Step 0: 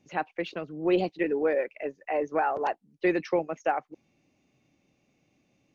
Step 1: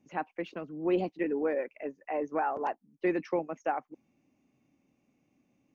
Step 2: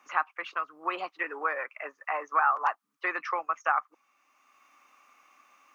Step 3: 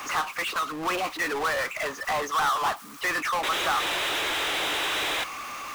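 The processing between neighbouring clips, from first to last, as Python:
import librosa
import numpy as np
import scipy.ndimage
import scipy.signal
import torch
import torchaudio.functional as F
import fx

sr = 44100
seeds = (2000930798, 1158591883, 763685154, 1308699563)

y1 = fx.graphic_eq_15(x, sr, hz=(250, 1000, 4000), db=(8, 4, -7))
y1 = F.gain(torch.from_numpy(y1), -6.0).numpy()
y2 = fx.highpass_res(y1, sr, hz=1200.0, q=7.2)
y2 = fx.band_squash(y2, sr, depth_pct=40)
y2 = F.gain(torch.from_numpy(y2), 4.5).numpy()
y3 = fx.spec_paint(y2, sr, seeds[0], shape='noise', start_s=3.43, length_s=1.81, low_hz=290.0, high_hz=4000.0, level_db=-36.0)
y3 = fx.power_curve(y3, sr, exponent=0.35)
y3 = F.gain(torch.from_numpy(y3), -7.0).numpy()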